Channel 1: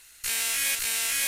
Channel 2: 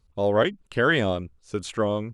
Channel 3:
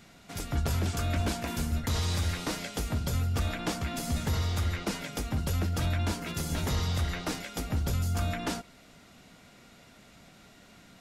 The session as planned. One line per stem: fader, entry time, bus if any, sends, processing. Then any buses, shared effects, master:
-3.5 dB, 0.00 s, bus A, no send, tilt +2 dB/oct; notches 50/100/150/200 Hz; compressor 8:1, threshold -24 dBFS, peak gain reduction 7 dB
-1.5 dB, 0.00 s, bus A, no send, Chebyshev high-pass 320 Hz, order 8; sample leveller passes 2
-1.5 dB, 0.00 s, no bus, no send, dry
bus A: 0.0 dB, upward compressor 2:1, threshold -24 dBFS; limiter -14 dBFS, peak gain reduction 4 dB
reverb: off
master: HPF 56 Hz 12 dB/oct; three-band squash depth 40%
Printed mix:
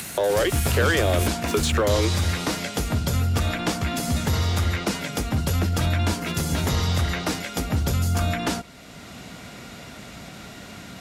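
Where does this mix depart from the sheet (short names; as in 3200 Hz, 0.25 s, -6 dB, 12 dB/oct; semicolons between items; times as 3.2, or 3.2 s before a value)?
stem 2 -1.5 dB -> +9.5 dB; stem 3 -1.5 dB -> +7.0 dB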